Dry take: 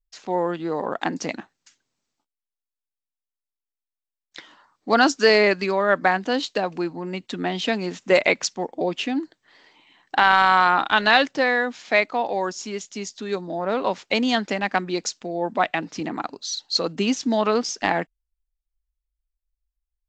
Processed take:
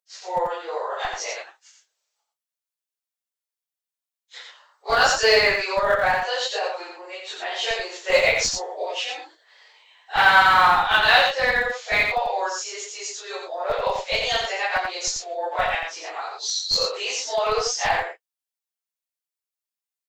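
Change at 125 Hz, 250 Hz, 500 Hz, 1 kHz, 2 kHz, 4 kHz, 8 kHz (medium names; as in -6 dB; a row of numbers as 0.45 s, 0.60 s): -7.0 dB, -18.0 dB, -1.5 dB, +0.5 dB, +2.0 dB, +3.5 dB, +4.5 dB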